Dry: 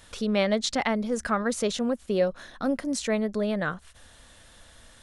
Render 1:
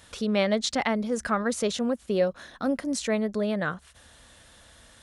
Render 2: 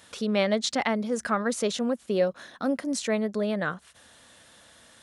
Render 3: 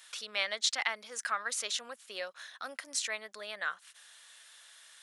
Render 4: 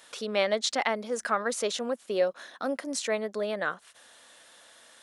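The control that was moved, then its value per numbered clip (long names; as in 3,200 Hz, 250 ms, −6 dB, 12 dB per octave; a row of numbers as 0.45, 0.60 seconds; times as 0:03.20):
high-pass filter, corner frequency: 42, 140, 1,500, 400 Hertz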